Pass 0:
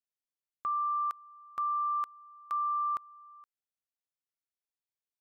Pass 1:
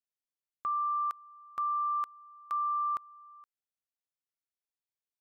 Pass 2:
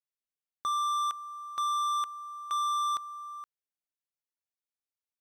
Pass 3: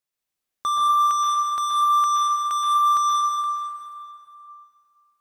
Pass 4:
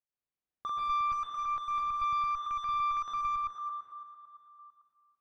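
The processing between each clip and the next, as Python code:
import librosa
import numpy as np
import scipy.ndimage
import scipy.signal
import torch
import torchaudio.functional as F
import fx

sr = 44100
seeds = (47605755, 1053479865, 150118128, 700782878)

y1 = x
y2 = fx.leveller(y1, sr, passes=3)
y3 = fx.rev_plate(y2, sr, seeds[0], rt60_s=2.5, hf_ratio=0.75, predelay_ms=110, drr_db=-3.0)
y3 = F.gain(torch.from_numpy(y3), 7.0).numpy()
y4 = fx.reverse_delay(y3, sr, ms=112, wet_db=-2.0)
y4 = fx.clip_asym(y4, sr, top_db=-21.0, bottom_db=-13.5)
y4 = fx.spacing_loss(y4, sr, db_at_10k=32)
y4 = F.gain(torch.from_numpy(y4), -7.5).numpy()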